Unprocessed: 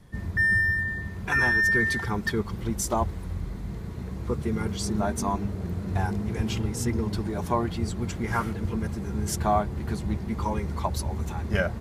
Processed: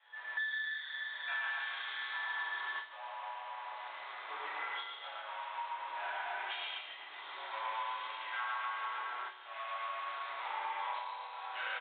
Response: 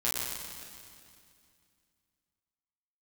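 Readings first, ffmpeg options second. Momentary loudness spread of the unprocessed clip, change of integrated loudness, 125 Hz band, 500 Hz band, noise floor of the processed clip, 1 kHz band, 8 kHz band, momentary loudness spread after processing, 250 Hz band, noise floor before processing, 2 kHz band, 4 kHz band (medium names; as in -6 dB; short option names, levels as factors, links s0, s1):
11 LU, -12.5 dB, under -40 dB, -20.5 dB, -49 dBFS, -6.5 dB, under -40 dB, 8 LU, under -40 dB, -36 dBFS, -11.5 dB, -2.5 dB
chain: -filter_complex "[0:a]asplit=2[s0][s1];[s1]acrusher=bits=3:mix=0:aa=0.5,volume=0.398[s2];[s0][s2]amix=inputs=2:normalize=0,asplit=2[s3][s4];[s4]adelay=33,volume=0.447[s5];[s3][s5]amix=inputs=2:normalize=0,asoftclip=type=tanh:threshold=0.075,aemphasis=mode=production:type=bsi,aecho=1:1:110.8|244.9:1|0.708,afreqshift=-51,highpass=f=810:w=0.5412,highpass=f=810:w=1.3066[s6];[1:a]atrim=start_sample=2205[s7];[s6][s7]afir=irnorm=-1:irlink=0,acompressor=threshold=0.0316:ratio=6,aresample=8000,aresample=44100,volume=0.562"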